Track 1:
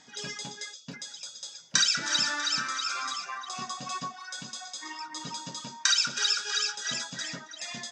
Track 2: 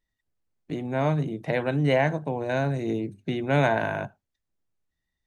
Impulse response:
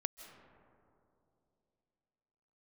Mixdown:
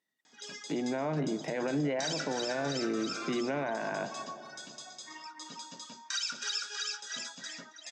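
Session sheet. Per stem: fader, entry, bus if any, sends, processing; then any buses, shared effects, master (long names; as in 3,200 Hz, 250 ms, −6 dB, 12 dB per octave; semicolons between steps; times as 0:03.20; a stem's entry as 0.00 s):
−7.0 dB, 0.25 s, no send, no processing
−3.0 dB, 0.00 s, send −4 dB, treble cut that deepens with the level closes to 2,500 Hz, closed at −20 dBFS; brickwall limiter −18.5 dBFS, peak gain reduction 8 dB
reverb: on, RT60 2.8 s, pre-delay 120 ms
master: high-pass filter 190 Hz 24 dB per octave; brickwall limiter −24 dBFS, peak gain reduction 10.5 dB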